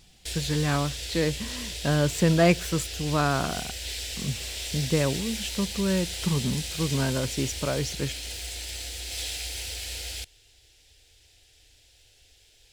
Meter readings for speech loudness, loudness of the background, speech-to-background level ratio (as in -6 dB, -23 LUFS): -27.5 LUFS, -33.0 LUFS, 5.5 dB